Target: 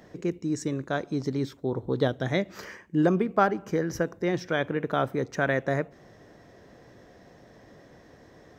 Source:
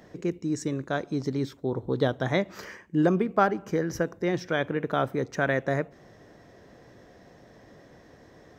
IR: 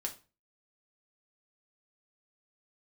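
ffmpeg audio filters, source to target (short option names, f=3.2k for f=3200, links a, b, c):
-filter_complex "[0:a]asettb=1/sr,asplit=3[a][b][c];[a]atrim=end=2.084[d];[b]atrim=start=2.08:end=2.55,asetpts=PTS-STARTPTS,afade=t=in:d=0.004:c=qsin,afade=t=out:st=0.466:d=0.004:c=qsin,equalizer=f=1k:w=1.5:g=-7[e];[c]atrim=start=2.546[f];[d][e]acrossfade=d=0.004:c1=hsin:c2=qsin[g];[g][f]acrossfade=d=0.004:c1=qsin:c2=hsin"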